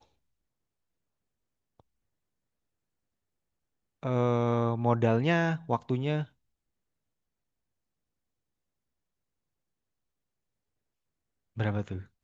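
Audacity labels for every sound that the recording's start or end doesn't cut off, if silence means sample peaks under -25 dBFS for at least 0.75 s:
4.050000	6.200000	sound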